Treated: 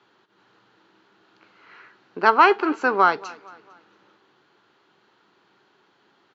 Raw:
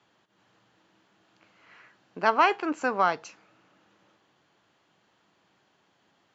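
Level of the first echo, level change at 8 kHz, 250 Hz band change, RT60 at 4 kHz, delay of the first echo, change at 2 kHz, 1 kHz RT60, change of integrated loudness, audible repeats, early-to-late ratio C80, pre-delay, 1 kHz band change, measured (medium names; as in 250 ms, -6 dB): -21.5 dB, no reading, +6.0 dB, no reverb, 227 ms, +7.0 dB, no reverb, +6.5 dB, 2, no reverb, no reverb, +6.5 dB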